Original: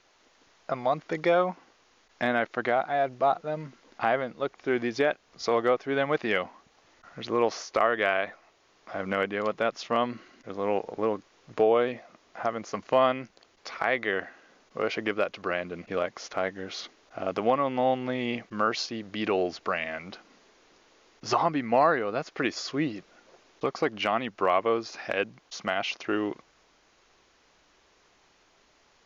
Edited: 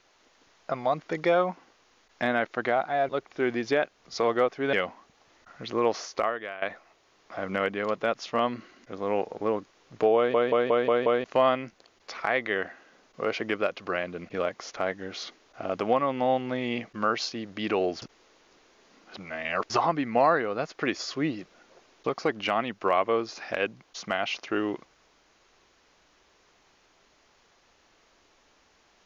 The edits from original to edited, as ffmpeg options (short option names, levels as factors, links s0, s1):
-filter_complex "[0:a]asplit=12[s0][s1][s2][s3][s4][s5][s6][s7][s8][s9][s10][s11];[s0]atrim=end=3.092[s12];[s1]atrim=start=4.368:end=6.012[s13];[s2]atrim=start=6.298:end=8.19,asetpts=PTS-STARTPTS,afade=t=out:st=1.412:d=0.48:c=qua:silence=0.188365[s14];[s3]atrim=start=8.19:end=11.912,asetpts=PTS-STARTPTS,afade=t=in:d=0.004:c=hsin:silence=0.188365[s15];[s4]atrim=start=11.728:end=11.912[s16];[s5]atrim=start=11.728:end=11.912[s17];[s6]atrim=start=11.728:end=11.912[s18];[s7]atrim=start=11.728:end=11.912[s19];[s8]atrim=start=11.728:end=11.912[s20];[s9]atrim=start=12.808:end=19.592[s21];[s10]atrim=start=19.588:end=21.272,asetpts=PTS-STARTPTS,areverse[s22];[s11]atrim=start=21.268[s23];[s12][s13]acrossfade=d=0.004:c1=hsin:c2=hsin[s24];[s14][s15]concat=n=2:v=0:a=1[s25];[s24][s25]acrossfade=d=0.004:c1=hsin:c2=hsin[s26];[s26][s16]acrossfade=d=0.004:c1=hsin:c2=hsin[s27];[s27][s17]acrossfade=d=0.004:c1=hsin:c2=hsin[s28];[s28][s18]acrossfade=d=0.004:c1=hsin:c2=hsin[s29];[s29][s19]acrossfade=d=0.004:c1=hsin:c2=hsin[s30];[s30][s20]acrossfade=d=0.004:c1=hsin:c2=hsin[s31];[s31][s21]acrossfade=d=0.004:c1=hsin:c2=hsin[s32];[s32][s22]acrossfade=d=0.004:c1=hsin:c2=hsin[s33];[s33][s23]acrossfade=d=0.004:c1=hsin:c2=hsin"